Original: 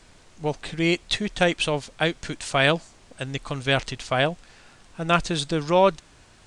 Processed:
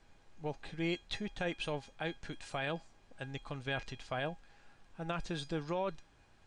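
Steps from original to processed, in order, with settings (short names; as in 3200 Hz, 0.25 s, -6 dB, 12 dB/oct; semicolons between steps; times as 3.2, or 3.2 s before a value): LPF 2600 Hz 6 dB/oct; limiter -14.5 dBFS, peak gain reduction 8 dB; resonator 820 Hz, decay 0.21 s, mix 80%; gain +1 dB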